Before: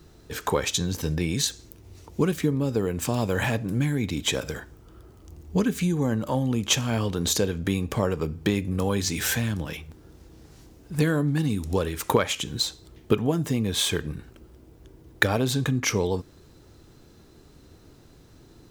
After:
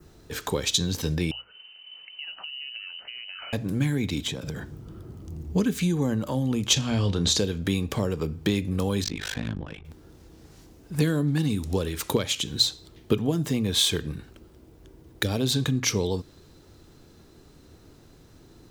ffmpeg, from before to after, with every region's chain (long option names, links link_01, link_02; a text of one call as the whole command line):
ffmpeg -i in.wav -filter_complex "[0:a]asettb=1/sr,asplit=3[link_01][link_02][link_03];[link_01]atrim=end=1.314[link_04];[link_02]atrim=start=1.31:end=3.53,asetpts=PTS-STARTPTS,afade=type=in:duration=0.004:curve=qsin,afade=type=out:start_time=2.216:duration=0.004:curve=qsin,acompressor=threshold=-36dB:ratio=10:attack=3.2:release=140:knee=1:detection=peak,lowpass=frequency=2600:width_type=q:width=0.5098,lowpass=frequency=2600:width_type=q:width=0.6013,lowpass=frequency=2600:width_type=q:width=0.9,lowpass=frequency=2600:width_type=q:width=2.563,afreqshift=-3100[link_05];[link_03]atrim=start=3.526[link_06];[link_04][link_05]acrossfade=duration=0.004:curve1=hsin:curve2=qsin[link_07];[link_07][link_06]acrossfade=duration=0.004:curve1=qsin:curve2=hsin,asettb=1/sr,asplit=3[link_08][link_09][link_10];[link_08]atrim=end=4.264[link_11];[link_09]atrim=start=4.26:end=5.53,asetpts=PTS-STARTPTS,afade=type=in:duration=0.004:curve=qsin,afade=type=out:start_time=1.266:duration=0.004:curve=qsin,equalizer=frequency=150:width=0.58:gain=14,acompressor=threshold=-28dB:ratio=12:attack=3.2:release=140:knee=1:detection=peak[link_12];[link_10]atrim=start=5.526[link_13];[link_11][link_12]acrossfade=duration=0.004:curve1=hsin:curve2=qsin[link_14];[link_14][link_13]acrossfade=duration=0.004:curve1=qsin:curve2=hsin,asettb=1/sr,asplit=3[link_15][link_16][link_17];[link_15]atrim=end=6.734[link_18];[link_16]atrim=start=6.73:end=7.38,asetpts=PTS-STARTPTS,afade=type=in:duration=0.004:curve=qsin,afade=type=out:start_time=0.646:duration=0.004:curve=qsin,lowpass=7300,lowshelf=frequency=100:gain=8,asplit=2[link_19][link_20];[link_20]adelay=30,volume=-11dB[link_21];[link_19][link_21]amix=inputs=2:normalize=0,atrim=end_sample=28665[link_22];[link_17]atrim=start=7.376[link_23];[link_18][link_22]acrossfade=duration=0.004:curve1=hsin:curve2=qsin[link_24];[link_24][link_23]acrossfade=duration=0.004:curve1=qsin:curve2=hsin,asettb=1/sr,asplit=3[link_25][link_26][link_27];[link_25]atrim=end=9.044[link_28];[link_26]atrim=start=9.04:end=9.85,asetpts=PTS-STARTPTS,afade=type=in:duration=0.004:curve=qsin,afade=type=out:start_time=0.806:duration=0.004:curve=qsin,tremolo=f=51:d=0.947,adynamicsmooth=sensitivity=4:basefreq=1800[link_29];[link_27]atrim=start=9.846[link_30];[link_28][link_29]acrossfade=duration=0.004:curve1=hsin:curve2=qsin[link_31];[link_31][link_30]acrossfade=duration=0.004:curve1=qsin:curve2=hsin,bandreject=frequency=60:width_type=h:width=6,bandreject=frequency=120:width_type=h:width=6,adynamicequalizer=threshold=0.00708:dfrequency=3900:dqfactor=1.6:tfrequency=3900:tqfactor=1.6:attack=5:release=100:ratio=0.375:range=3:mode=boostabove:tftype=bell,acrossover=split=460|3000[link_32][link_33][link_34];[link_33]acompressor=threshold=-33dB:ratio=6[link_35];[link_32][link_35][link_34]amix=inputs=3:normalize=0" out.wav